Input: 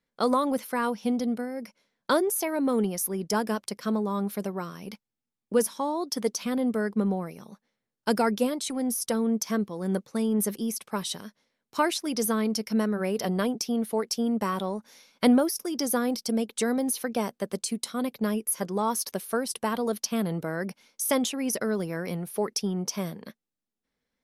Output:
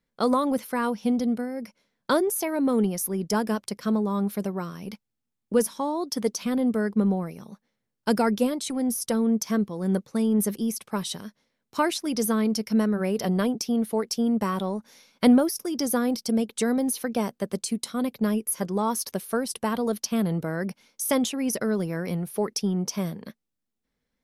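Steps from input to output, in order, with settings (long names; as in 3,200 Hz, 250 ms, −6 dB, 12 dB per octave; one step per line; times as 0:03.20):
low-shelf EQ 200 Hz +7.5 dB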